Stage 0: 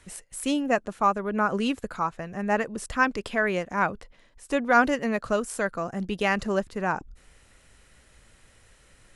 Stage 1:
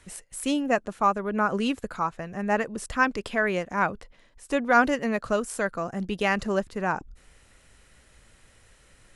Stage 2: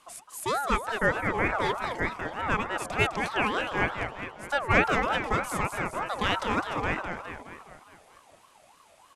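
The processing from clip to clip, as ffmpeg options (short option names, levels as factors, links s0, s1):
-af anull
-filter_complex "[0:a]asplit=8[s0][s1][s2][s3][s4][s5][s6][s7];[s1]adelay=207,afreqshift=-56,volume=0.473[s8];[s2]adelay=414,afreqshift=-112,volume=0.269[s9];[s3]adelay=621,afreqshift=-168,volume=0.153[s10];[s4]adelay=828,afreqshift=-224,volume=0.0881[s11];[s5]adelay=1035,afreqshift=-280,volume=0.0501[s12];[s6]adelay=1242,afreqshift=-336,volume=0.0285[s13];[s7]adelay=1449,afreqshift=-392,volume=0.0162[s14];[s0][s8][s9][s10][s11][s12][s13][s14]amix=inputs=8:normalize=0,aeval=exprs='val(0)*sin(2*PI*880*n/s+880*0.3/3.3*sin(2*PI*3.3*n/s))':c=same"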